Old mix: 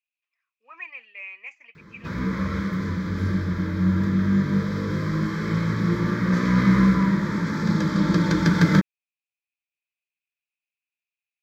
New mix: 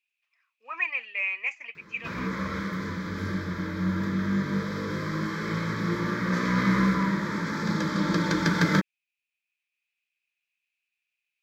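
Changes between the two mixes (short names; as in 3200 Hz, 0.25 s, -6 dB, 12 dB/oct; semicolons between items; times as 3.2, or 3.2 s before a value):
speech +9.5 dB; master: add low shelf 210 Hz -11.5 dB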